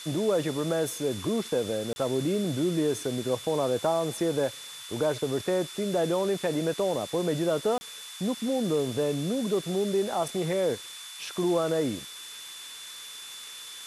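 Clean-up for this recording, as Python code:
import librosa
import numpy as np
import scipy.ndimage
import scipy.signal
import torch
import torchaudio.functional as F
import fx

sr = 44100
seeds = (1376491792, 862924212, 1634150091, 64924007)

y = fx.notch(x, sr, hz=3500.0, q=30.0)
y = fx.fix_interpolate(y, sr, at_s=(1.93, 7.78), length_ms=30.0)
y = fx.noise_reduce(y, sr, print_start_s=12.07, print_end_s=12.57, reduce_db=30.0)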